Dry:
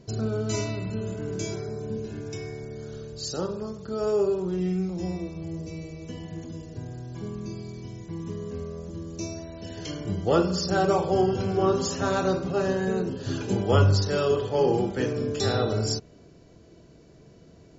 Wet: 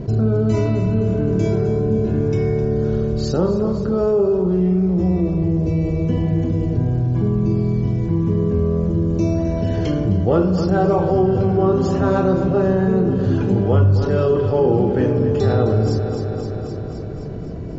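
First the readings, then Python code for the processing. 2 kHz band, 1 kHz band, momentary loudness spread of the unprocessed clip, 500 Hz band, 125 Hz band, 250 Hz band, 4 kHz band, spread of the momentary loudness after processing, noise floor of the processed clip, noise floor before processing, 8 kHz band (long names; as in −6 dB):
+2.0 dB, +4.5 dB, 15 LU, +8.0 dB, +12.0 dB, +11.5 dB, −4.5 dB, 4 LU, −27 dBFS, −52 dBFS, can't be measured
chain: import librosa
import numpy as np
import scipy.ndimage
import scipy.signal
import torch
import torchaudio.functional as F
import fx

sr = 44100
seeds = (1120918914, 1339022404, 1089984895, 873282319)

p1 = fx.tilt_eq(x, sr, slope=-2.0)
p2 = fx.rider(p1, sr, range_db=10, speed_s=0.5)
p3 = p1 + (p2 * 10.0 ** (-1.0 / 20.0))
p4 = np.clip(p3, -10.0 ** (-2.5 / 20.0), 10.0 ** (-2.5 / 20.0))
p5 = fx.lowpass(p4, sr, hz=1700.0, slope=6)
p6 = p5 + fx.echo_feedback(p5, sr, ms=260, feedback_pct=60, wet_db=-12.0, dry=0)
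p7 = fx.env_flatten(p6, sr, amount_pct=50)
y = p7 * 10.0 ** (-4.0 / 20.0)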